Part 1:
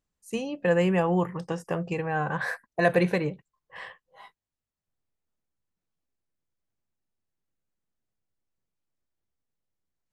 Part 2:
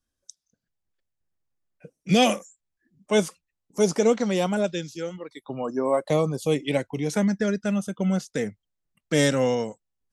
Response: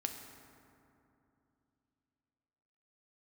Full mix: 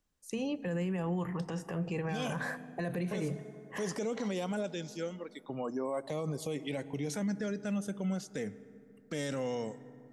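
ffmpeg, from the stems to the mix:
-filter_complex "[0:a]bandreject=f=50:t=h:w=6,bandreject=f=100:t=h:w=6,bandreject=f=150:t=h:w=6,acrossover=split=320|1300|5200[a][b][c][d];[a]acompressor=threshold=-27dB:ratio=4[e];[b]acompressor=threshold=-38dB:ratio=4[f];[c]acompressor=threshold=-43dB:ratio=4[g];[d]acompressor=threshold=-56dB:ratio=4[h];[e][f][g][h]amix=inputs=4:normalize=0,volume=0dB,asplit=3[i][j][k];[j]volume=-12dB[l];[1:a]volume=-7dB,asplit=2[m][n];[n]volume=-13.5dB[o];[k]apad=whole_len=446415[p];[m][p]sidechaincompress=threshold=-38dB:ratio=8:attack=16:release=390[q];[2:a]atrim=start_sample=2205[r];[l][o]amix=inputs=2:normalize=0[s];[s][r]afir=irnorm=-1:irlink=0[t];[i][q][t]amix=inputs=3:normalize=0,alimiter=level_in=3dB:limit=-24dB:level=0:latency=1:release=60,volume=-3dB"

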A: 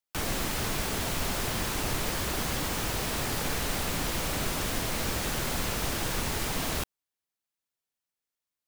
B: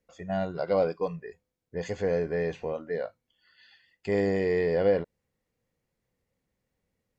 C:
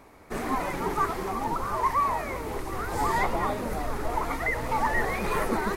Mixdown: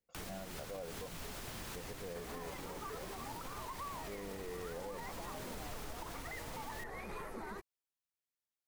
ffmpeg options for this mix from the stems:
-filter_complex "[0:a]alimiter=level_in=2.5dB:limit=-24dB:level=0:latency=1:release=386,volume=-2.5dB,volume=-8dB[a];[1:a]volume=-13.5dB[b];[2:a]acompressor=threshold=-44dB:ratio=2,adelay=1850,volume=-4dB[c];[a][b][c]amix=inputs=3:normalize=0,alimiter=level_in=11dB:limit=-24dB:level=0:latency=1:release=174,volume=-11dB"

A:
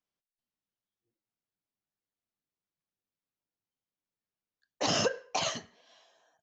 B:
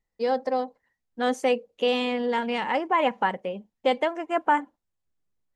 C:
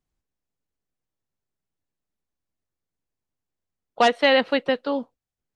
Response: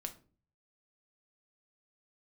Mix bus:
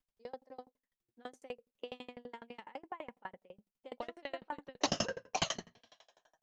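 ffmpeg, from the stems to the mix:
-filter_complex "[0:a]volume=2.5dB,asplit=2[a][b];[b]volume=-4.5dB[c];[1:a]highpass=160,volume=-15.5dB,asplit=2[d][e];[e]volume=-21dB[f];[2:a]acompressor=threshold=-29dB:ratio=2,volume=-12.5dB,asplit=3[g][h][i];[h]volume=-19dB[j];[i]apad=whole_len=283129[k];[a][k]sidechaincompress=threshold=-48dB:ratio=8:attack=16:release=135[l];[3:a]atrim=start_sample=2205[m];[c][f][j]amix=inputs=3:normalize=0[n];[n][m]afir=irnorm=-1:irlink=0[o];[l][d][g][o]amix=inputs=4:normalize=0,lowshelf=f=72:g=9,aeval=exprs='val(0)*pow(10,-32*if(lt(mod(12*n/s,1),2*abs(12)/1000),1-mod(12*n/s,1)/(2*abs(12)/1000),(mod(12*n/s,1)-2*abs(12)/1000)/(1-2*abs(12)/1000))/20)':c=same"

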